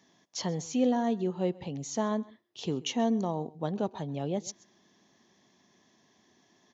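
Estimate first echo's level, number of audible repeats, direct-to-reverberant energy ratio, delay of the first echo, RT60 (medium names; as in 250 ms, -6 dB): -22.0 dB, 1, no reverb, 132 ms, no reverb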